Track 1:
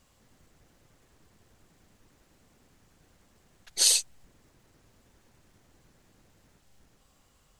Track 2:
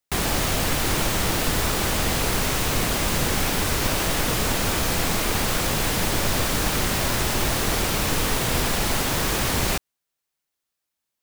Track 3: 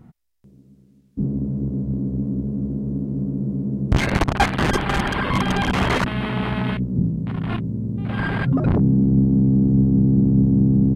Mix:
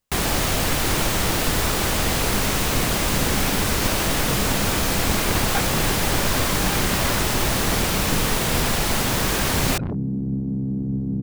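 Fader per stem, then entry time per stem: -19.0 dB, +1.5 dB, -9.0 dB; 0.00 s, 0.00 s, 1.15 s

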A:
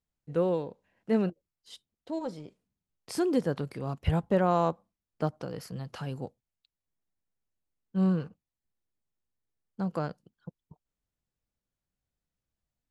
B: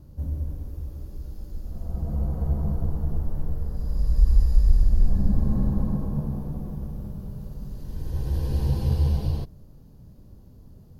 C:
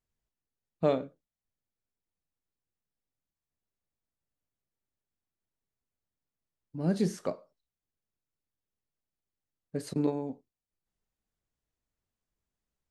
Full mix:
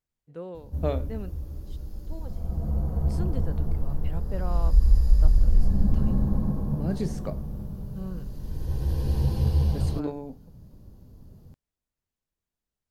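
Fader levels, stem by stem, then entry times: -11.5 dB, -0.5 dB, -2.5 dB; 0.00 s, 0.55 s, 0.00 s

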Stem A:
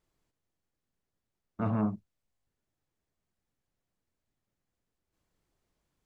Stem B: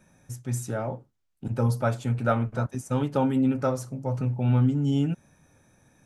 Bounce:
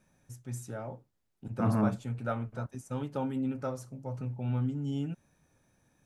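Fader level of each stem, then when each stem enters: +1.5 dB, -9.5 dB; 0.00 s, 0.00 s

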